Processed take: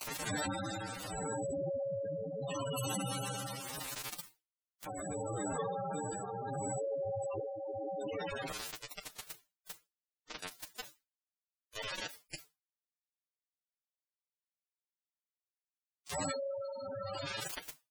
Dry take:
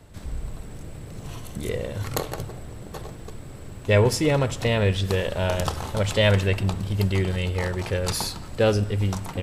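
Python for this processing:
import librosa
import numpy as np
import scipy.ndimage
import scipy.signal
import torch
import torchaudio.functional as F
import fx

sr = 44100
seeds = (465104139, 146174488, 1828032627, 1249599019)

y = fx.gate_flip(x, sr, shuts_db=-24.0, range_db=-37)
y = fx.highpass(y, sr, hz=770.0, slope=6)
y = fx.room_early_taps(y, sr, ms=(31, 62), db=(-7.5, -17.5))
y = fx.rider(y, sr, range_db=4, speed_s=2.0)
y = fx.rev_fdn(y, sr, rt60_s=3.4, lf_ratio=1.0, hf_ratio=0.9, size_ms=11.0, drr_db=-0.5)
y = fx.quant_dither(y, sr, seeds[0], bits=8, dither='none')
y = fx.mod_noise(y, sr, seeds[1], snr_db=24)
y = fx.stretch_vocoder(y, sr, factor=1.9)
y = fx.tremolo_shape(y, sr, shape='triangle', hz=0.76, depth_pct=90)
y = fx.spec_gate(y, sr, threshold_db=-10, keep='strong')
y = y + 0.46 * np.pad(y, (int(6.6 * sr / 1000.0), 0))[:len(y)]
y = fx.env_flatten(y, sr, amount_pct=70)
y = y * 10.0 ** (9.0 / 20.0)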